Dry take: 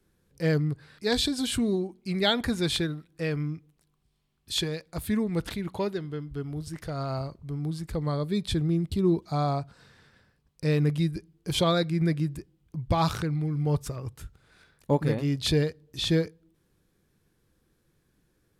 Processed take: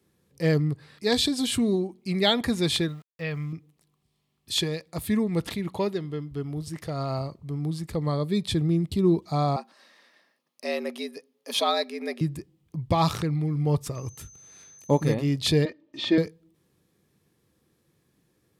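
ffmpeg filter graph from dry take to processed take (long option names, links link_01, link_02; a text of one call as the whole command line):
ffmpeg -i in.wav -filter_complex "[0:a]asettb=1/sr,asplit=3[link_01][link_02][link_03];[link_01]atrim=end=2.884[link_04];[link_02]atrim=start=2.88:end=3.53,asetpts=PTS-STARTPTS,afade=type=in:duration=0.004:curve=qsin,afade=type=out:start_time=0.646:duration=0.004:curve=qsin,lowpass=frequency=4100:width=0.5412,lowpass=frequency=4100:width=1.3066,equalizer=frequency=320:width_type=o:width=1.3:gain=-11.5,aeval=exprs='val(0)*gte(abs(val(0)),0.00211)':channel_layout=same[link_05];[link_03]atrim=start=3.526[link_06];[link_04][link_05]acrossfade=duration=0.004:curve1=hsin:curve2=qsin[link_07];[link_07][link_06]acrossfade=duration=0.004:curve1=qsin:curve2=hsin,asettb=1/sr,asplit=3[link_08][link_09][link_10];[link_08]atrim=end=9.564[link_11];[link_09]atrim=start=9.56:end=12.21,asetpts=PTS-STARTPTS,afade=type=in:duration=0.004:curve=qsin,afade=type=out:start_time=2.646:duration=0.004:curve=qsin,bandreject=frequency=7600:width=6.3,afreqshift=94,highpass=580[link_12];[link_10]atrim=start=12.206[link_13];[link_11][link_12]acrossfade=duration=0.004:curve1=hsin:curve2=qsin[link_14];[link_14][link_13]acrossfade=duration=0.004:curve1=qsin:curve2=hsin,asettb=1/sr,asplit=3[link_15][link_16][link_17];[link_15]atrim=end=13.954[link_18];[link_16]atrim=start=13.95:end=15.14,asetpts=PTS-STARTPTS,afade=type=in:duration=0.004:curve=qsin,afade=type=out:start_time=1.186:duration=0.004:curve=qsin,highshelf=frequency=5700:gain=4.5,aeval=exprs='val(0)+0.00282*sin(2*PI*6200*n/s)':channel_layout=same[link_19];[link_17]atrim=start=15.136[link_20];[link_18][link_19]acrossfade=duration=0.004:curve1=hsin:curve2=qsin[link_21];[link_21][link_20]acrossfade=duration=0.004:curve1=qsin:curve2=hsin,asettb=1/sr,asplit=3[link_22][link_23][link_24];[link_22]atrim=end=15.654[link_25];[link_23]atrim=start=15.65:end=16.18,asetpts=PTS-STARTPTS,afade=type=in:duration=0.004:curve=qsin,afade=type=out:start_time=0.526:duration=0.004:curve=qsin,highpass=210,lowpass=2900,aecho=1:1:3.3:0.89,atrim=end_sample=23373[link_26];[link_24]atrim=start=16.176[link_27];[link_25][link_26]acrossfade=duration=0.004:curve1=hsin:curve2=qsin[link_28];[link_28][link_27]acrossfade=duration=0.004:curve1=qsin:curve2=hsin,highpass=93,bandreject=frequency=1500:width=6.4,volume=2.5dB" out.wav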